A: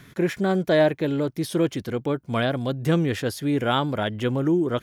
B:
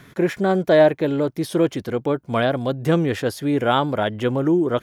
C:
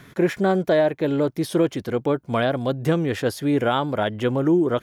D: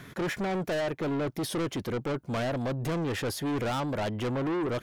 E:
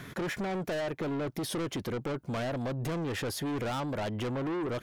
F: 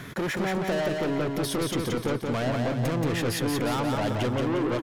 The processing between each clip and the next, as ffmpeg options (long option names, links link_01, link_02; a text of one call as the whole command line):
ffmpeg -i in.wav -af "equalizer=frequency=690:width_type=o:width=2.4:gain=5.5" out.wav
ffmpeg -i in.wav -af "alimiter=limit=-10dB:level=0:latency=1:release=324" out.wav
ffmpeg -i in.wav -af "asoftclip=type=tanh:threshold=-27.5dB" out.wav
ffmpeg -i in.wav -af "acompressor=threshold=-34dB:ratio=6,volume=2dB" out.wav
ffmpeg -i in.wav -af "aecho=1:1:177|354|531|708|885|1062:0.668|0.327|0.16|0.0786|0.0385|0.0189,volume=4.5dB" out.wav